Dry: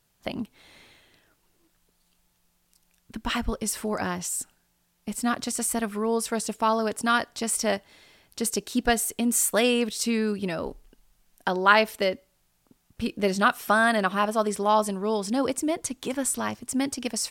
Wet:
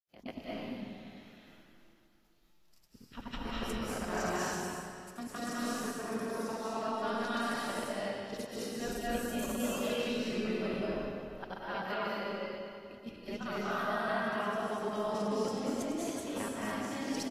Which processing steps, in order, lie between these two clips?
time reversed locally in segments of 104 ms; peaking EQ 8.6 kHz -13 dB 0.32 oct; hum notches 60/120/180 Hz; reverse; compression 4:1, threshold -35 dBFS, peak gain reduction 19 dB; reverse; granulator 189 ms, grains 20 per s, pitch spread up and down by 0 st; level held to a coarse grid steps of 14 dB; feedback delay 276 ms, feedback 57%, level -24 dB; reverberation RT60 2.2 s, pre-delay 158 ms, DRR -7 dB; trim +1.5 dB; AAC 48 kbps 32 kHz

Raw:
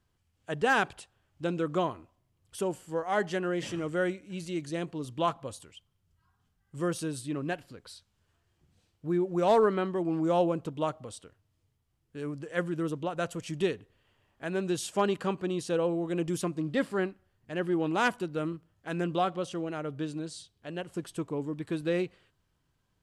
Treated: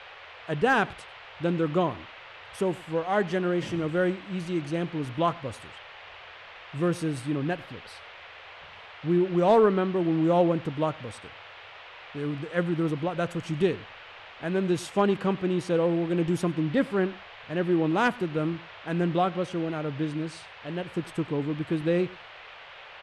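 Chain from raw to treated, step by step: treble shelf 4.4 kHz -7.5 dB; band-stop 7.3 kHz, Q 16; band noise 480–3100 Hz -49 dBFS; bass shelf 240 Hz +6 dB; echo from a far wall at 17 m, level -23 dB; trim +2.5 dB

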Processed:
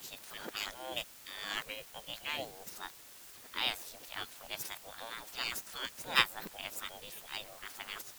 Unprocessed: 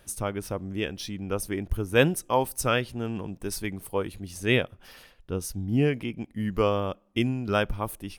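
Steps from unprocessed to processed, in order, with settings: reverse the whole clip; formant shift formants +5 st; spectral gate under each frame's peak -20 dB weak; in parallel at -5 dB: word length cut 8-bit, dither triangular; on the sum: upward expansion 2.5:1, over -29 dBFS; trim +4 dB

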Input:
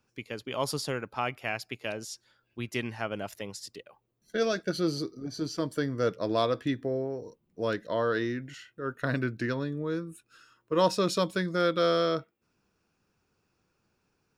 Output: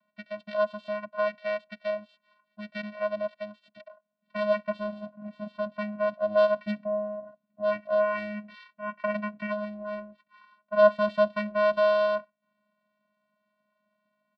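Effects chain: resampled via 8 kHz; vocoder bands 8, square 209 Hz; resonant low shelf 370 Hz -12.5 dB, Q 1.5; trim +7 dB

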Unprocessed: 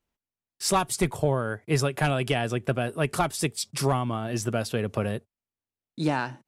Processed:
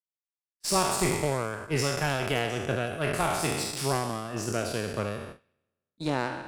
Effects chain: spectral sustain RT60 1.51 s; Chebyshev shaper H 5 -40 dB, 7 -25 dB, 8 -27 dB, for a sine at -6.5 dBFS; gate -35 dBFS, range -26 dB; band-passed feedback delay 100 ms, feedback 43%, band-pass 2.5 kHz, level -23 dB; trim -5 dB

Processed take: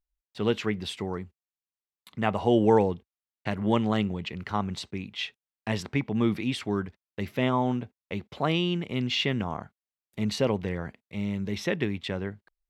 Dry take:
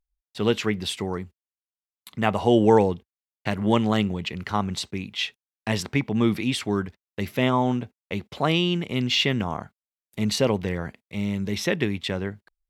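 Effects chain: treble shelf 5.5 kHz -9 dB; trim -3.5 dB

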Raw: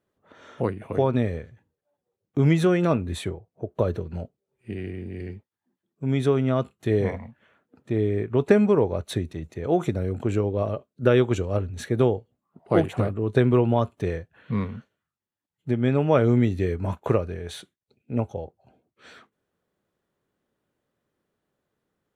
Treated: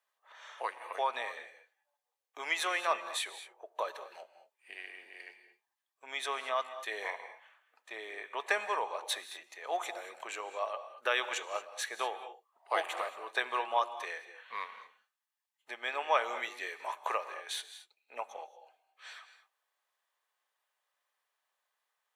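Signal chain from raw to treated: high-pass 840 Hz 24 dB/octave; band-stop 1.4 kHz, Q 8; gated-style reverb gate 250 ms rising, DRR 11.5 dB; trim +1.5 dB

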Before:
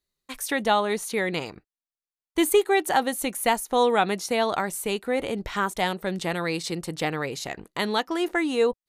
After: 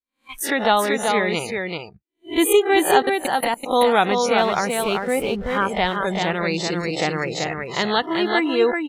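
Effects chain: reverse spectral sustain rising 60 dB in 0.33 s; spectral noise reduction 23 dB; 3.02–3.66 s: level held to a coarse grid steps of 24 dB; 4.38–5.58 s: hysteresis with a dead band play -39 dBFS; delay 384 ms -4.5 dB; trim +3.5 dB

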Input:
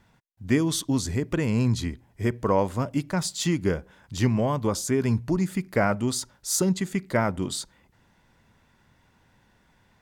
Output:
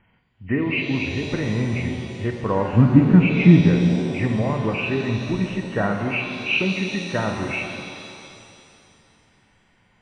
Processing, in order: knee-point frequency compression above 1.8 kHz 4:1; 2.73–3.61 s: resonant low shelf 370 Hz +13 dB, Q 1.5; pitch-shifted reverb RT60 2.5 s, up +7 st, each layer -8 dB, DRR 3 dB; trim -1 dB

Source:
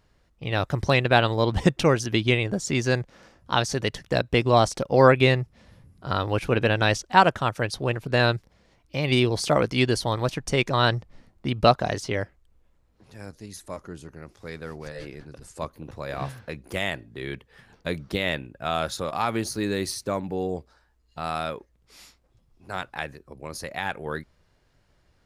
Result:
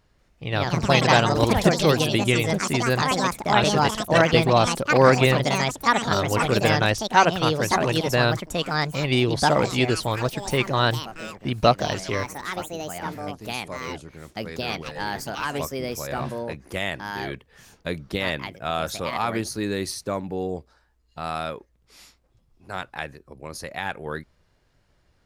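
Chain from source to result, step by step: ever faster or slower copies 190 ms, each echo +4 st, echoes 3

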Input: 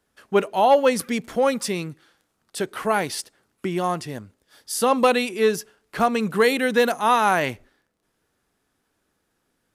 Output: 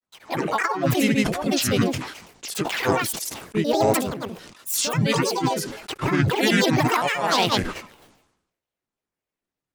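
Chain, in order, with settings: gate with hold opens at -46 dBFS; compressor with a negative ratio -22 dBFS, ratio -0.5; granulator, pitch spread up and down by 12 st; harmony voices +4 st -1 dB; decay stretcher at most 66 dB/s

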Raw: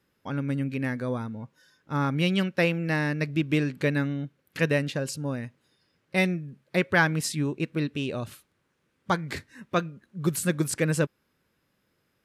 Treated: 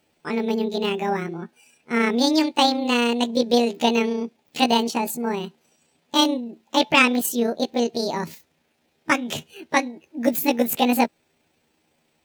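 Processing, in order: rotating-head pitch shifter +8 st; trim +6.5 dB

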